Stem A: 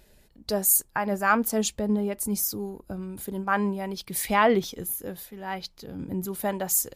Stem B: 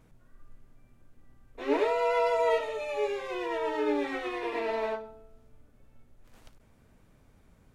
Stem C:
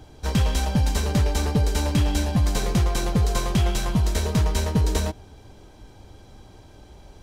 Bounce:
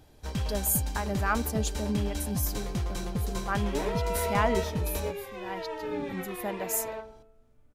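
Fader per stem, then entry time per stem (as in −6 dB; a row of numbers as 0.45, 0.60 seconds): −6.5, −5.5, −10.5 decibels; 0.00, 2.05, 0.00 seconds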